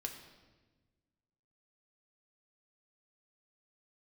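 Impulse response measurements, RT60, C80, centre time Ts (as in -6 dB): 1.3 s, 9.0 dB, 25 ms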